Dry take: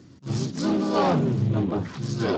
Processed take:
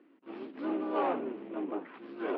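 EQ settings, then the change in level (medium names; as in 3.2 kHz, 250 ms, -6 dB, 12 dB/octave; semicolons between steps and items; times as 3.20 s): elliptic band-pass 290–2700 Hz, stop band 40 dB; -7.5 dB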